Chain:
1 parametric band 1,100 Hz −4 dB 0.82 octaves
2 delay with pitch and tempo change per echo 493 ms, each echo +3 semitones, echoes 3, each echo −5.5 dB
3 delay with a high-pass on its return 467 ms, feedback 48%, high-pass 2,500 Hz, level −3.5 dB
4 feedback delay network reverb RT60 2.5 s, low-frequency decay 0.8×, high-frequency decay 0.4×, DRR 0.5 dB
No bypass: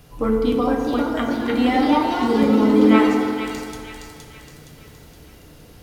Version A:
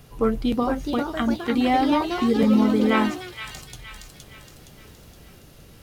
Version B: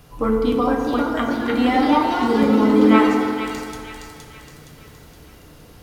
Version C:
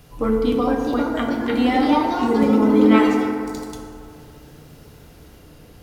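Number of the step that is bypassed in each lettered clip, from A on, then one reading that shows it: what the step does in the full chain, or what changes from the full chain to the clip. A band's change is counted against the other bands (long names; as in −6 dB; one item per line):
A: 4, change in integrated loudness −3.5 LU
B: 1, 1 kHz band +2.0 dB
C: 3, 4 kHz band −1.5 dB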